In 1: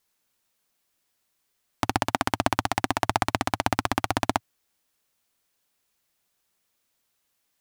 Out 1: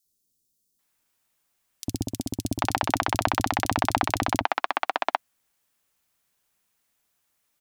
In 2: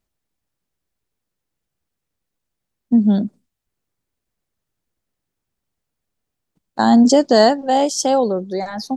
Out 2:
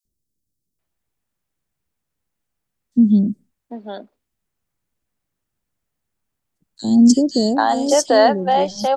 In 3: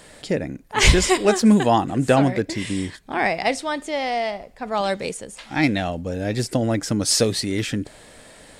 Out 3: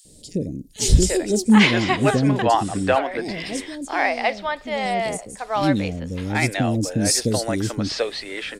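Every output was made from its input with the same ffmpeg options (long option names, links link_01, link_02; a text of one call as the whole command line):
ffmpeg -i in.wav -filter_complex "[0:a]acrossover=split=430|4300[link_01][link_02][link_03];[link_01]adelay=50[link_04];[link_02]adelay=790[link_05];[link_04][link_05][link_03]amix=inputs=3:normalize=0,volume=1.5dB" out.wav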